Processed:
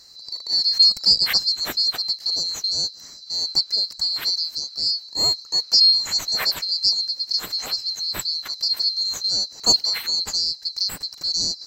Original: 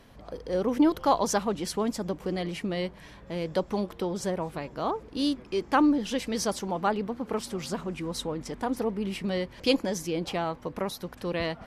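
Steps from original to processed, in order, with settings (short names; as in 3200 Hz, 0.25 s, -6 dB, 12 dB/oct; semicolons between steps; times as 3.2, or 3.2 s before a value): band-swap scrambler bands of 4000 Hz; gain +6.5 dB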